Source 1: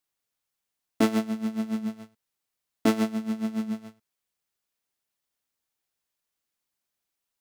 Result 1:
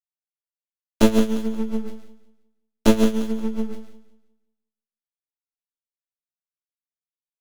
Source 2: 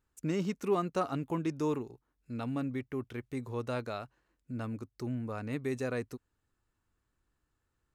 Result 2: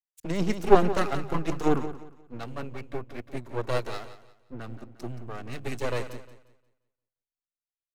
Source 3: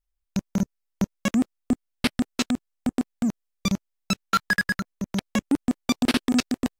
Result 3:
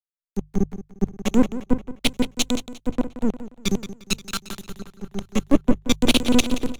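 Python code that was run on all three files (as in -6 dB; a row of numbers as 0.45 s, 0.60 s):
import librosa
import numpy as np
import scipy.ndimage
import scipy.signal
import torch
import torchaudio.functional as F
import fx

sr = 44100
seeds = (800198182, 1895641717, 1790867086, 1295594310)

p1 = fx.env_flanger(x, sr, rest_ms=7.5, full_db=-24.0)
p2 = np.maximum(p1, 0.0)
p3 = fx.hum_notches(p2, sr, base_hz=50, count=3)
p4 = p3 + fx.echo_feedback(p3, sr, ms=177, feedback_pct=56, wet_db=-9.0, dry=0)
p5 = fx.band_widen(p4, sr, depth_pct=100)
y = librosa.util.normalize(p5) * 10.0 ** (-1.5 / 20.0)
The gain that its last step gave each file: +7.0 dB, +11.5 dB, +7.0 dB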